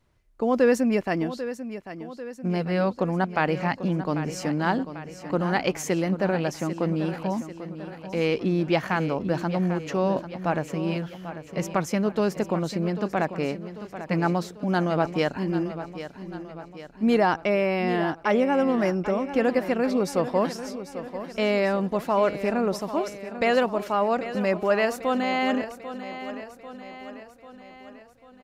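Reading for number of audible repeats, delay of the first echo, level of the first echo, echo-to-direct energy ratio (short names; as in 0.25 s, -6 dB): 5, 0.793 s, -12.0 dB, -10.5 dB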